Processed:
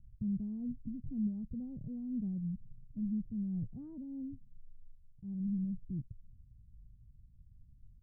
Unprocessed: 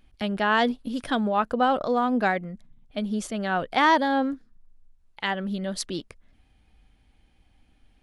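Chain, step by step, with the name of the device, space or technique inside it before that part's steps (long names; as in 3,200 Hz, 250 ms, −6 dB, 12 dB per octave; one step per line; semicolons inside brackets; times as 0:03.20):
the neighbour's flat through the wall (low-pass filter 160 Hz 24 dB per octave; parametric band 120 Hz +8 dB 0.71 octaves)
0:03.63–0:04.04: parametric band 1,500 Hz +13.5 dB 0.73 octaves
level +2 dB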